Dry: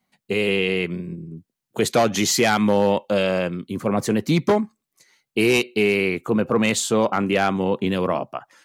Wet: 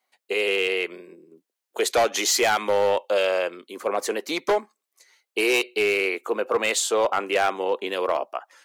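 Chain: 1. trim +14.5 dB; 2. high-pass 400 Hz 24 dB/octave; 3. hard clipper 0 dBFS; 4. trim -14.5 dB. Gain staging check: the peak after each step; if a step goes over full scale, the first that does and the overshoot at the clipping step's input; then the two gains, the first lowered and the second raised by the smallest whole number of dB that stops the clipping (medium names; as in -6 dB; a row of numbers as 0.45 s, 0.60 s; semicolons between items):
+8.5 dBFS, +7.5 dBFS, 0.0 dBFS, -14.5 dBFS; step 1, 7.5 dB; step 1 +6.5 dB, step 4 -6.5 dB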